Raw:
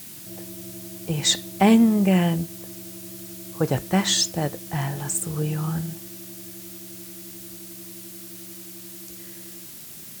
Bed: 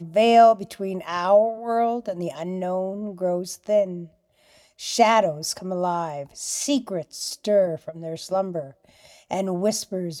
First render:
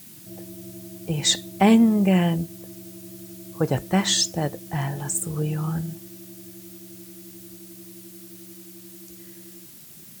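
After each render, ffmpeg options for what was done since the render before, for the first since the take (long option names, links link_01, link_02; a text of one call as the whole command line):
ffmpeg -i in.wav -af "afftdn=noise_reduction=6:noise_floor=-41" out.wav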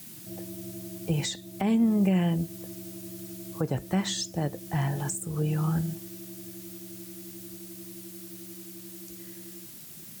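ffmpeg -i in.wav -filter_complex "[0:a]alimiter=limit=-15.5dB:level=0:latency=1:release=487,acrossover=split=360[link_01][link_02];[link_02]acompressor=threshold=-34dB:ratio=2[link_03];[link_01][link_03]amix=inputs=2:normalize=0" out.wav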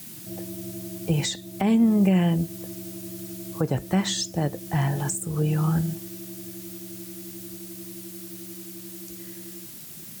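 ffmpeg -i in.wav -af "volume=4dB" out.wav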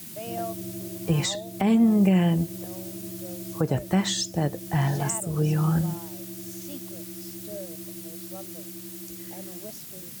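ffmpeg -i in.wav -i bed.wav -filter_complex "[1:a]volume=-20.5dB[link_01];[0:a][link_01]amix=inputs=2:normalize=0" out.wav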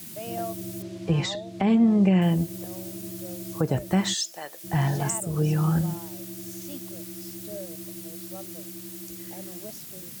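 ffmpeg -i in.wav -filter_complex "[0:a]asettb=1/sr,asplit=3[link_01][link_02][link_03];[link_01]atrim=end=0.824[link_04];[link_02]atrim=start=0.82:end=2.22,asetpts=PTS-STARTPTS,afade=type=in:duration=0.004:curve=qsin,afade=type=out:start_time=1.396:duration=0.004:curve=qsin,lowpass=4600[link_05];[link_03]atrim=start=2.216[link_06];[link_04][link_05]acrossfade=duration=0.004:curve1=hsin:curve2=qsin[link_07];[link_07][link_06]acrossfade=duration=0.004:curve1=qsin:curve2=hsin,asplit=3[link_08][link_09][link_10];[link_08]afade=type=out:start_time=4.13:duration=0.02[link_11];[link_09]highpass=980,afade=type=in:start_time=4.13:duration=0.02,afade=type=out:start_time=4.63:duration=0.02[link_12];[link_10]afade=type=in:start_time=4.63:duration=0.02[link_13];[link_11][link_12][link_13]amix=inputs=3:normalize=0" out.wav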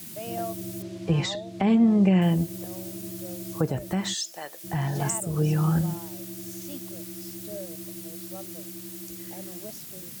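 ffmpeg -i in.wav -filter_complex "[0:a]asettb=1/sr,asplit=3[link_01][link_02][link_03];[link_01]atrim=end=3.704[link_04];[link_02]atrim=start=3.7:end=4.96,asetpts=PTS-STARTPTS,afade=type=in:duration=0.004:curve=qsin,afade=type=out:start_time=1.256:duration=0.004:curve=qsin,acompressor=threshold=-30dB:ratio=1.5:attack=3.2:release=140:knee=1:detection=peak[link_05];[link_03]atrim=start=4.956[link_06];[link_04][link_05]acrossfade=duration=0.004:curve1=hsin:curve2=qsin[link_07];[link_07][link_06]acrossfade=duration=0.004:curve1=qsin:curve2=hsin" out.wav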